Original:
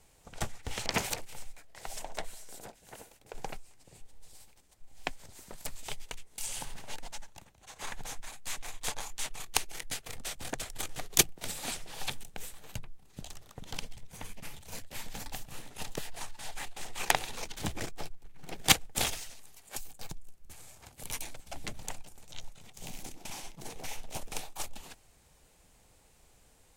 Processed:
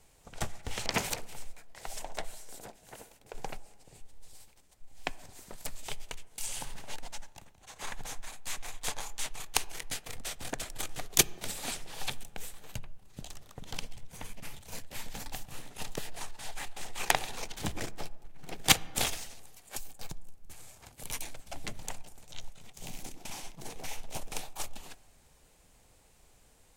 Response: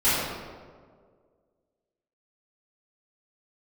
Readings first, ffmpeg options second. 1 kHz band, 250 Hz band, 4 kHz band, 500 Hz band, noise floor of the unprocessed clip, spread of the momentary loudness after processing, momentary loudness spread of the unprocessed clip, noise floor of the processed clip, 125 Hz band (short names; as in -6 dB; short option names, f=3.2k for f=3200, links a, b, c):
0.0 dB, 0.0 dB, 0.0 dB, +0.5 dB, -62 dBFS, 20 LU, 20 LU, -62 dBFS, 0.0 dB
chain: -filter_complex "[0:a]asplit=2[a][b];[1:a]atrim=start_sample=2205,asetrate=52920,aresample=44100,highshelf=f=3.2k:g=-10.5[c];[b][c]afir=irnorm=-1:irlink=0,volume=-32dB[d];[a][d]amix=inputs=2:normalize=0"